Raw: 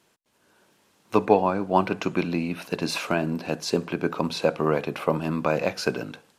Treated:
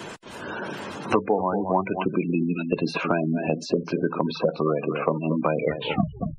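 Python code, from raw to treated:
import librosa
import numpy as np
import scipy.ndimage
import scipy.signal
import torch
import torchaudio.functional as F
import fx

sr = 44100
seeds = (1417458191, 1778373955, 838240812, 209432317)

p1 = fx.tape_stop_end(x, sr, length_s=0.84)
p2 = p1 + fx.echo_single(p1, sr, ms=228, db=-11.0, dry=0)
p3 = 10.0 ** (-6.5 / 20.0) * (np.abs((p2 / 10.0 ** (-6.5 / 20.0) + 3.0) % 4.0 - 2.0) - 1.0)
p4 = fx.spec_gate(p3, sr, threshold_db=-15, keep='strong')
y = fx.band_squash(p4, sr, depth_pct=100)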